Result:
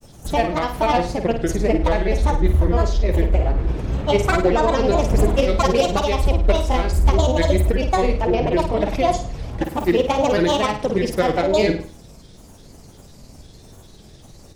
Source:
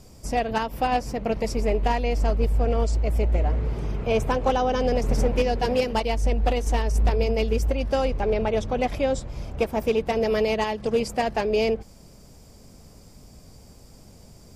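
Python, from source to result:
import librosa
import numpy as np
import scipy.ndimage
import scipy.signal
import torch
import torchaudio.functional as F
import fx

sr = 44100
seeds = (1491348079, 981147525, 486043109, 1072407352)

y = fx.granulator(x, sr, seeds[0], grain_ms=100.0, per_s=20.0, spray_ms=27.0, spread_st=7)
y = fx.room_flutter(y, sr, wall_m=8.9, rt60_s=0.41)
y = y * 10.0 ** (5.5 / 20.0)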